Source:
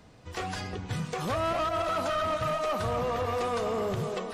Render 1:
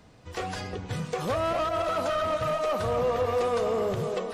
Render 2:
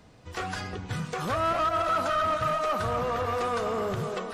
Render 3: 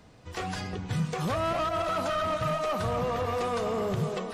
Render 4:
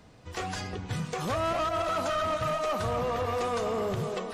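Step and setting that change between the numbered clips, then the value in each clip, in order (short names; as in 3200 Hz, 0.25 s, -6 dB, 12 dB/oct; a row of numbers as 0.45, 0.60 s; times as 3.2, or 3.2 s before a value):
dynamic EQ, frequency: 510, 1400, 160, 6700 Hz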